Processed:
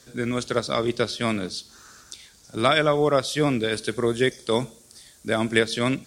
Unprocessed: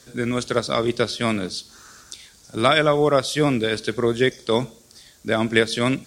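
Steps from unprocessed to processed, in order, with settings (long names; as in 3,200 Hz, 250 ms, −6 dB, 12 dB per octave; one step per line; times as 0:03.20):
0:03.72–0:05.59: parametric band 9,700 Hz +8 dB 0.58 octaves
level −2.5 dB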